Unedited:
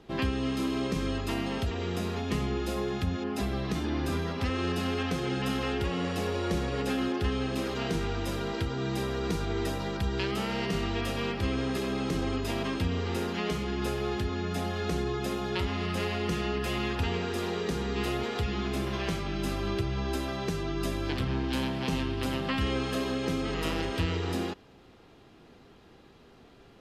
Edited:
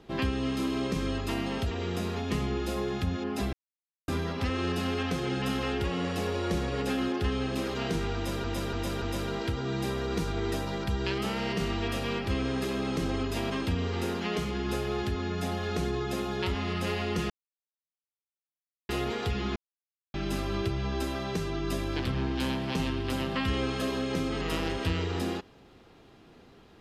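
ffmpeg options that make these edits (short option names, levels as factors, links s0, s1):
-filter_complex "[0:a]asplit=10[s0][s1][s2][s3][s4][s5][s6][s7][s8][s9];[s0]atrim=end=3.53,asetpts=PTS-STARTPTS,afade=t=out:st=3.526:d=0.004:c=hsin[s10];[s1]atrim=start=3.53:end=4.08,asetpts=PTS-STARTPTS,volume=0[s11];[s2]atrim=start=4.08:end=8.442,asetpts=PTS-STARTPTS,afade=t=in:d=0.004:c=hsin[s12];[s3]atrim=start=8.148:end=8.442[s13];[s4]atrim=start=8.148:end=8.442[s14];[s5]atrim=start=8.148:end=16.43,asetpts=PTS-STARTPTS,afade=t=out:st=8.278:d=0.004:c=hsin[s15];[s6]atrim=start=16.43:end=18.02,asetpts=PTS-STARTPTS,volume=0[s16];[s7]atrim=start=18.02:end=18.69,asetpts=PTS-STARTPTS,afade=t=in:d=0.004:c=hsin,afade=t=out:st=0.666:d=0.004:c=hsin[s17];[s8]atrim=start=18.69:end=19.27,asetpts=PTS-STARTPTS,volume=0[s18];[s9]atrim=start=19.27,asetpts=PTS-STARTPTS,afade=t=in:d=0.004:c=hsin[s19];[s10][s11][s12]concat=n=3:v=0:a=1[s20];[s20][s13]acrossfade=d=0.004:c1=hsin:c2=hsin[s21];[s21][s14]acrossfade=d=0.004:c1=hsin:c2=hsin[s22];[s15][s16][s17][s18][s19]concat=n=5:v=0:a=1[s23];[s22][s23]acrossfade=d=0.004:c1=hsin:c2=hsin"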